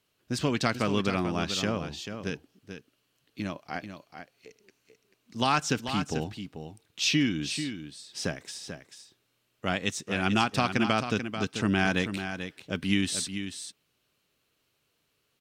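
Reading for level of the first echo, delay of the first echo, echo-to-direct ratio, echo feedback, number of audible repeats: -9.0 dB, 439 ms, -9.0 dB, no regular repeats, 1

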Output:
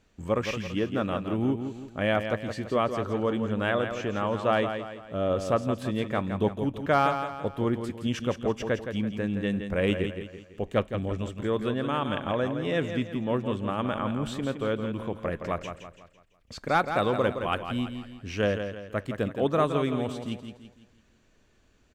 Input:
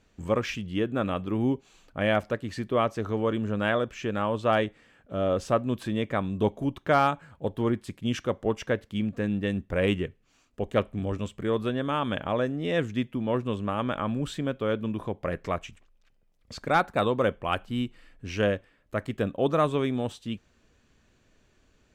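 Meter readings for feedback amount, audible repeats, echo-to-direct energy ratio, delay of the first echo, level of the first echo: 42%, 4, -7.0 dB, 167 ms, -8.0 dB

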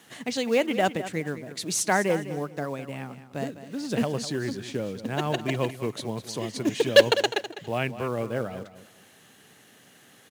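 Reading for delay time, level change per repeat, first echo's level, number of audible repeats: 203 ms, -13.0 dB, -13.0 dB, 2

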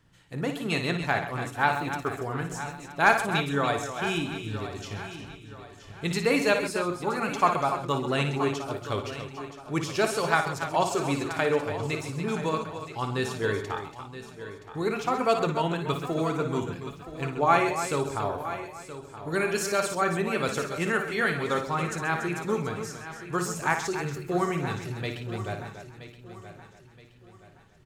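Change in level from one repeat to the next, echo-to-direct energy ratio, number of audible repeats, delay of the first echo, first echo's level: no regular repeats, -4.0 dB, 11, 57 ms, -8.0 dB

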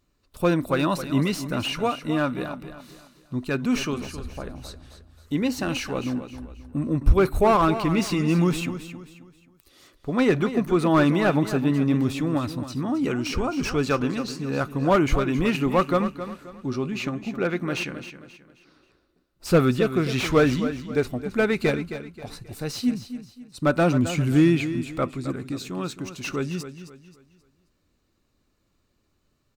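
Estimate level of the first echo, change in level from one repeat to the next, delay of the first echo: -11.5 dB, -9.0 dB, 266 ms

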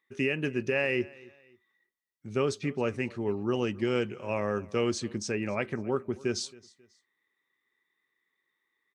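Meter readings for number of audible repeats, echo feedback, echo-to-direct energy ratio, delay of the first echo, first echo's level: 2, 34%, -22.0 dB, 270 ms, -22.5 dB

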